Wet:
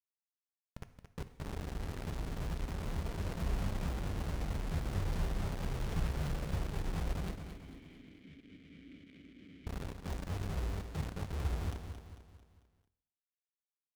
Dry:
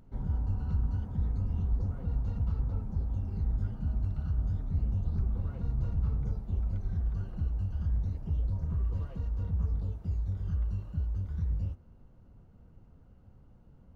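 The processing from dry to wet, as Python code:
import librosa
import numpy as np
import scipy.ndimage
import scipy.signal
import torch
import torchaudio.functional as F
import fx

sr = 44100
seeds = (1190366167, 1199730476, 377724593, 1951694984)

y = fx.fade_in_head(x, sr, length_s=3.25)
y = fx.peak_eq(y, sr, hz=170.0, db=9.0, octaves=0.34)
y = fx.chorus_voices(y, sr, voices=6, hz=0.64, base_ms=29, depth_ms=4.6, mix_pct=55)
y = fx.quant_dither(y, sr, seeds[0], bits=6, dither='none')
y = fx.vowel_filter(y, sr, vowel='i', at=(7.31, 9.67))
y = fx.echo_feedback(y, sr, ms=223, feedback_pct=46, wet_db=-8.5)
y = fx.rev_gated(y, sr, seeds[1], gate_ms=310, shape='falling', drr_db=11.5)
y = fx.doppler_dist(y, sr, depth_ms=0.55)
y = y * librosa.db_to_amplitude(-4.5)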